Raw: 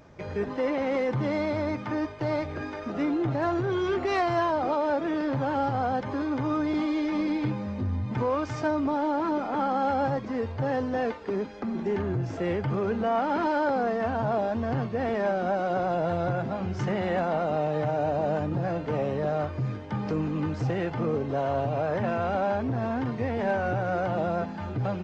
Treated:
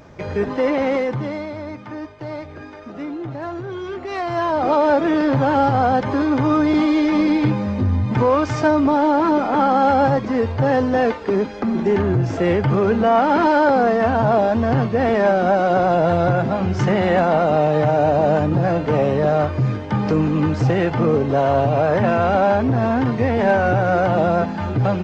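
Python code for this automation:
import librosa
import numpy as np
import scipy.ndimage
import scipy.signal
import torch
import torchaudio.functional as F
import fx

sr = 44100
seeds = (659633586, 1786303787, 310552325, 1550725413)

y = fx.gain(x, sr, db=fx.line((0.87, 8.5), (1.51, -2.0), (4.06, -2.0), (4.76, 10.5)))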